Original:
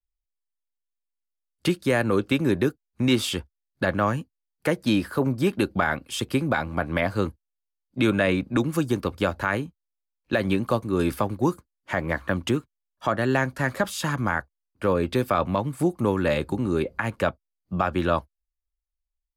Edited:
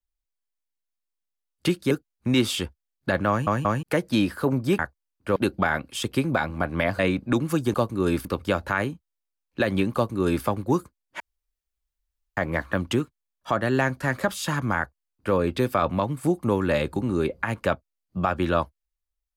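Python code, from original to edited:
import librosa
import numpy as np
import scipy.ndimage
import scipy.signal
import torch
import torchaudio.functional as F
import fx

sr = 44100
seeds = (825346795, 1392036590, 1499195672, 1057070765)

y = fx.edit(x, sr, fx.cut(start_s=1.91, length_s=0.74),
    fx.stutter_over(start_s=4.03, slice_s=0.18, count=3),
    fx.cut(start_s=7.16, length_s=1.07),
    fx.duplicate(start_s=10.67, length_s=0.51, to_s=8.98),
    fx.insert_room_tone(at_s=11.93, length_s=1.17),
    fx.duplicate(start_s=14.34, length_s=0.57, to_s=5.53), tone=tone)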